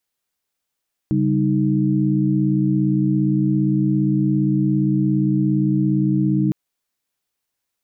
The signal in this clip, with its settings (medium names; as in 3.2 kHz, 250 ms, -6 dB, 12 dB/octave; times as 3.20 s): chord C#3/G3/D#4 sine, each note -19.5 dBFS 5.41 s